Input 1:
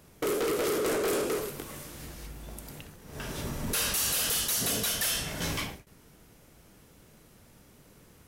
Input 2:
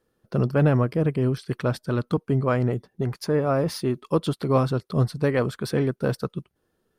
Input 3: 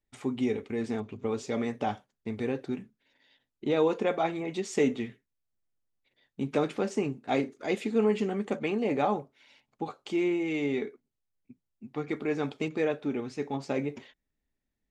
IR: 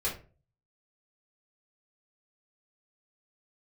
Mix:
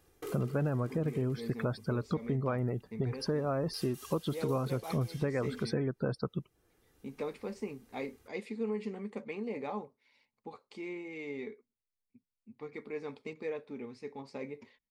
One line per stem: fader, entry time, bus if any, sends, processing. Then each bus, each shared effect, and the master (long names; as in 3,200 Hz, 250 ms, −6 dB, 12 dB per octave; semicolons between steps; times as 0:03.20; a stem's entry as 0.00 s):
−11.5 dB, 0.00 s, no send, comb filter 2.5 ms, depth 83%; automatic ducking −12 dB, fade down 0.75 s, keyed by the second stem
−2.5 dB, 0.00 s, no send, spectral peaks only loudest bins 64
−11.5 dB, 0.65 s, no send, EQ curve with evenly spaced ripples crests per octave 0.91, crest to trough 8 dB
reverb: not used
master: downward compressor 6 to 1, threshold −29 dBFS, peak gain reduction 11 dB